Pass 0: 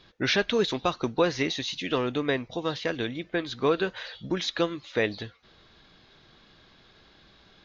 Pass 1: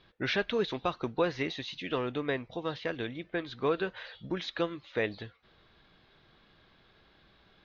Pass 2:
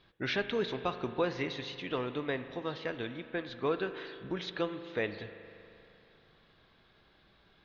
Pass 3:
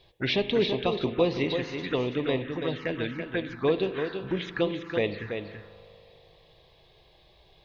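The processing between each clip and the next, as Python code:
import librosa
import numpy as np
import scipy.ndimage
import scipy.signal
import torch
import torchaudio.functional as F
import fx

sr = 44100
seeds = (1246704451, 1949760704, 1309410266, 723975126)

y1 = scipy.signal.sosfilt(scipy.signal.butter(2, 3500.0, 'lowpass', fs=sr, output='sos'), x)
y1 = fx.peak_eq(y1, sr, hz=260.0, db=-2.0, octaves=0.77)
y1 = y1 * 10.0 ** (-4.5 / 20.0)
y2 = fx.rev_spring(y1, sr, rt60_s=2.8, pass_ms=(39,), chirp_ms=70, drr_db=10.0)
y2 = y2 * 10.0 ** (-2.5 / 20.0)
y3 = fx.env_phaser(y2, sr, low_hz=230.0, high_hz=1500.0, full_db=-30.5)
y3 = y3 + 10.0 ** (-7.0 / 20.0) * np.pad(y3, (int(332 * sr / 1000.0), 0))[:len(y3)]
y3 = y3 * 10.0 ** (8.5 / 20.0)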